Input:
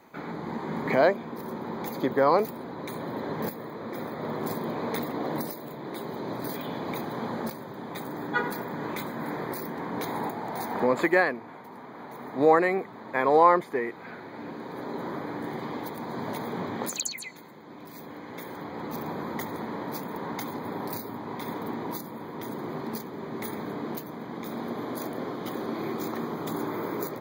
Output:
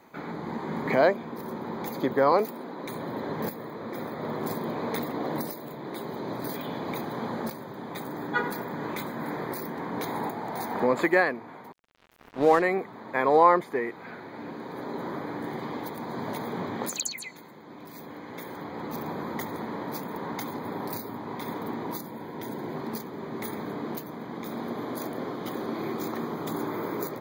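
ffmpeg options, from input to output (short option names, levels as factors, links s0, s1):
-filter_complex "[0:a]asettb=1/sr,asplit=3[s0][s1][s2];[s0]atrim=end=2.324[s3];[s1]atrim=start=2.32:end=2.86,asetpts=PTS-STARTPTS,afade=t=in:d=0.004:c=qsin,afade=t=out:st=0.536:d=0.004:c=qsin,highpass=f=180:w=0.5412,highpass=f=180:w=1.3066[s4];[s2]atrim=start=2.856[s5];[s3][s4]acrossfade=d=0.004:c1=hsin:c2=qsin[s6];[s6][s5]acrossfade=d=0.004:c1=qsin:c2=hsin,asettb=1/sr,asplit=3[s7][s8][s9];[s7]atrim=end=11.724[s10];[s8]atrim=start=11.72:end=12.62,asetpts=PTS-STARTPTS,afade=t=in:d=0.004:c=qsin,afade=t=out:st=0.896:d=0.004:c=qsin,aeval=exprs='sgn(val(0))*max(abs(val(0))-0.0158,0)':c=same[s11];[s9]atrim=start=12.616[s12];[s10][s11]acrossfade=d=0.004:c1=hsin:c2=qsin[s13];[s13][s12]acrossfade=d=0.004:c1=qsin:c2=hsin,asettb=1/sr,asplit=3[s14][s15][s16];[s14]atrim=end=22.074[s17];[s15]atrim=start=22.07:end=22.76,asetpts=PTS-STARTPTS,afade=t=in:d=0.004:c=qsin,afade=t=out:st=0.686:d=0.004:c=qsin,asuperstop=centerf=1200:order=4:qfactor=6.6[s18];[s16]atrim=start=22.756[s19];[s17][s18]acrossfade=d=0.004:c1=hsin:c2=qsin[s20];[s20][s19]acrossfade=d=0.004:c1=qsin:c2=hsin"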